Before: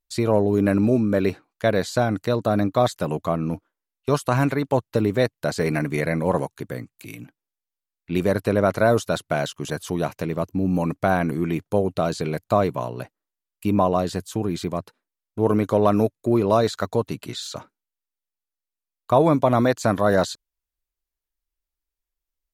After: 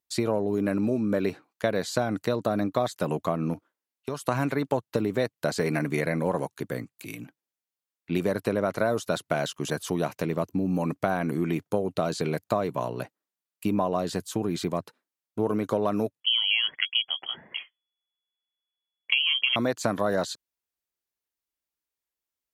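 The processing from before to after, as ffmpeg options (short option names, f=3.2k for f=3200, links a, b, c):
-filter_complex "[0:a]asettb=1/sr,asplit=3[a][b][c];[a]atrim=end=3.534[d];[b]atrim=start=3.53:end=4.24,asetpts=PTS-STARTPTS,afade=t=in:d=0.004:c=qsin,afade=t=out:st=0.706:d=0.004:c=qsin,acompressor=threshold=-27dB:ratio=6:attack=3.2:release=140:knee=1:detection=peak[e];[c]atrim=start=4.236[f];[d][e]acrossfade=d=0.004:c1=hsin:c2=qsin[g];[g][f]acrossfade=d=0.004:c1=qsin:c2=hsin,asettb=1/sr,asplit=3[h][i][j];[h]atrim=end=16.204[k];[i]atrim=start=16.2:end=19.56,asetpts=PTS-STARTPTS,afade=t=in:d=0.004:c=qsin,afade=t=out:st=3.356:d=0.004:c=qsin,lowpass=f=2.9k:t=q:w=0.5098,lowpass=f=2.9k:t=q:w=0.6013,lowpass=f=2.9k:t=q:w=0.9,lowpass=f=2.9k:t=q:w=2.563,afreqshift=-3400[l];[j]atrim=start=19.556[m];[k][l]acrossfade=d=0.004:c1=hsin:c2=qsin[n];[n][m]acrossfade=d=0.004:c1=qsin:c2=hsin,acompressor=threshold=-21dB:ratio=6,highpass=130"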